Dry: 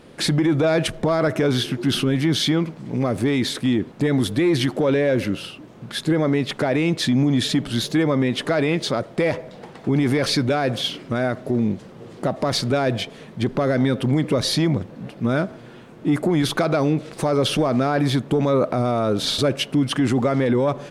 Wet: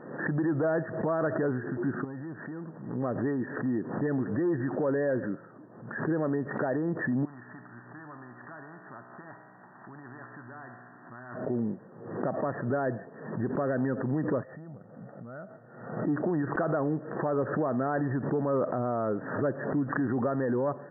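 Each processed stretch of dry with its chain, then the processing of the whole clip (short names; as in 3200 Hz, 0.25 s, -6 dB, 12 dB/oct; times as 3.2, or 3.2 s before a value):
2.04–2.95 compressor 10:1, threshold -23 dBFS + hard clip -24.5 dBFS
7.25–11.35 fixed phaser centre 1200 Hz, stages 4 + resonator 61 Hz, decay 1.1 s, mix 70% + spectral compressor 2:1
14.43–16.07 compressor 8:1, threshold -30 dBFS + comb 1.5 ms, depth 48% + expander -38 dBFS
whole clip: FFT band-pass 100–1900 Hz; low shelf 160 Hz -6 dB; backwards sustainer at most 69 dB/s; gain -8 dB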